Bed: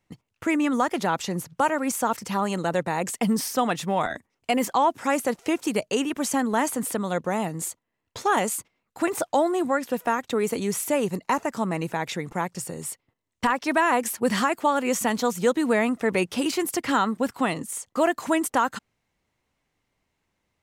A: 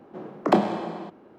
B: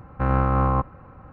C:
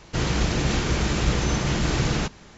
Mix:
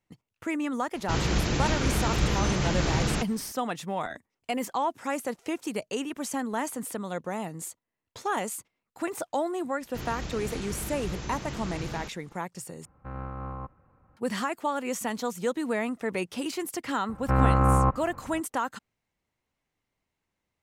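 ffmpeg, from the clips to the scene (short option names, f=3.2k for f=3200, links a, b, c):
-filter_complex "[3:a]asplit=2[a][b];[2:a]asplit=2[c][d];[0:a]volume=-7dB,asplit=2[e][f];[e]atrim=end=12.854[g];[c]atrim=end=1.32,asetpts=PTS-STARTPTS,volume=-16.5dB[h];[f]atrim=start=14.166[i];[a]atrim=end=2.57,asetpts=PTS-STARTPTS,volume=-3dB,afade=t=in:d=0.004:c=hsin,afade=t=out:st=2.566:d=0.004:c=hsin,adelay=950[j];[b]atrim=end=2.57,asetpts=PTS-STARTPTS,volume=-13.5dB,afade=t=in:d=0.004:c=hsin,afade=t=out:st=2.566:d=0.004:c=hsin,adelay=9810[k];[d]atrim=end=1.32,asetpts=PTS-STARTPTS,volume=-0.5dB,afade=t=in:d=0.004:c=hsin,afade=t=out:st=1.316:d=0.004:c=hsin,adelay=17090[l];[g][h]acrossfade=d=0.004:c1=hsin:c2=hsin[m];[m][i]acrossfade=d=0.004:c1=hsin:c2=hsin[n];[n][j][k][l]amix=inputs=4:normalize=0"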